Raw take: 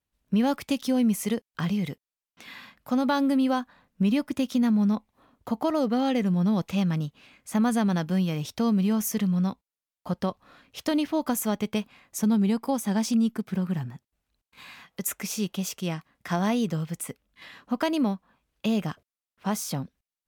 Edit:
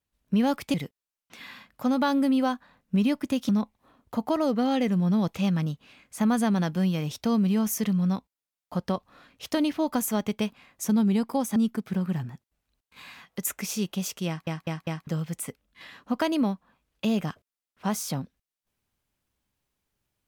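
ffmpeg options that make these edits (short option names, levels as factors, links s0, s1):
-filter_complex "[0:a]asplit=8[s0][s1][s2][s3][s4][s5][s6][s7];[s0]atrim=end=0.742[s8];[s1]atrim=start=1.808:end=4.562[s9];[s2]atrim=start=4.828:end=12.902[s10];[s3]atrim=start=13.168:end=16.082[s11];[s4]atrim=start=15.878:end=16.082[s12];[s5]atrim=start=15.878:end=16.082[s13];[s6]atrim=start=15.878:end=16.082[s14];[s7]atrim=start=16.678[s15];[s8][s9]acrossfade=d=0.004:c1=hsin:c2=hsin[s16];[s16][s10]acrossfade=d=0.004:c1=hsin:c2=hsin[s17];[s17][s11]acrossfade=d=0.004:c1=hsin:c2=hsin[s18];[s18][s12]acrossfade=d=0.004:c1=hsin:c2=hsin[s19];[s19][s13]acrossfade=d=0.004:c1=hsin:c2=hsin[s20];[s20][s14]acrossfade=d=0.004:c1=hsin:c2=hsin[s21];[s21][s15]acrossfade=d=0.004:c1=hsin:c2=hsin"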